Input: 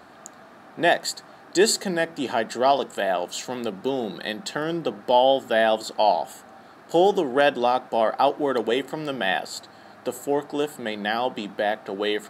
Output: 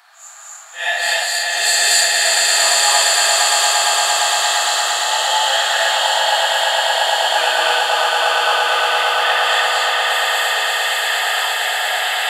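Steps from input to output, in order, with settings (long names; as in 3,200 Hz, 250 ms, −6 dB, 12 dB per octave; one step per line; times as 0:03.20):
random phases in long frames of 200 ms
high-pass filter 750 Hz 24 dB per octave
tilt shelving filter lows −7.5 dB
floating-point word with a short mantissa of 6 bits
0:07.27–0:07.67: frequency shifter −85 Hz
on a send: echo that builds up and dies away 115 ms, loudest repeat 8, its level −6 dB
on the sum: reverb whose tail is shaped and stops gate 310 ms rising, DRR −4 dB
level −1 dB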